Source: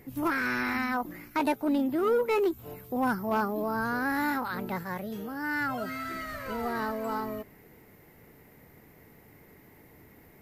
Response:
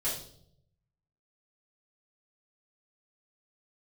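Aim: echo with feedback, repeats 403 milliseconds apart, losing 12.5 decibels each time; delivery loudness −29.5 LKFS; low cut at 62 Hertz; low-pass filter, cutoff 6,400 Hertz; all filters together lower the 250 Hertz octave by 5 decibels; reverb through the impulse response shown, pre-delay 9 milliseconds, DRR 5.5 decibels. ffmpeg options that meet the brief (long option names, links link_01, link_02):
-filter_complex "[0:a]highpass=62,lowpass=6400,equalizer=frequency=250:width_type=o:gain=-6,aecho=1:1:403|806|1209:0.237|0.0569|0.0137,asplit=2[link_01][link_02];[1:a]atrim=start_sample=2205,adelay=9[link_03];[link_02][link_03]afir=irnorm=-1:irlink=0,volume=-10.5dB[link_04];[link_01][link_04]amix=inputs=2:normalize=0,volume=0.5dB"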